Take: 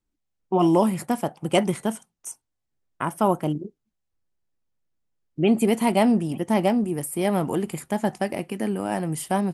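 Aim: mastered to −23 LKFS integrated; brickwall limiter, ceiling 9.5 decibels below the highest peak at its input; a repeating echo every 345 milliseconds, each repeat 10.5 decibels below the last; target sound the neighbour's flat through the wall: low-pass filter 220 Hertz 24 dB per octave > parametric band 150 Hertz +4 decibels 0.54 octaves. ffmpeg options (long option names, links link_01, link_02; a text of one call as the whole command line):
ffmpeg -i in.wav -af "alimiter=limit=-15dB:level=0:latency=1,lowpass=frequency=220:width=0.5412,lowpass=frequency=220:width=1.3066,equalizer=frequency=150:width_type=o:width=0.54:gain=4,aecho=1:1:345|690|1035:0.299|0.0896|0.0269,volume=7dB" out.wav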